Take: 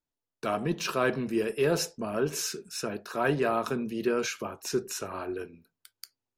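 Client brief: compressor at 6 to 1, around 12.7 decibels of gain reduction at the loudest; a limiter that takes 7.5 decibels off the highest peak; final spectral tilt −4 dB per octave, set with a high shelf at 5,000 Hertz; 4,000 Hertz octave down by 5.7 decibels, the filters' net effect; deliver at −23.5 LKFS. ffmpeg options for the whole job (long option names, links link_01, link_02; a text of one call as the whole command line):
ffmpeg -i in.wav -af "equalizer=frequency=4000:width_type=o:gain=-5.5,highshelf=frequency=5000:gain=-4.5,acompressor=threshold=-36dB:ratio=6,volume=19dB,alimiter=limit=-13.5dB:level=0:latency=1" out.wav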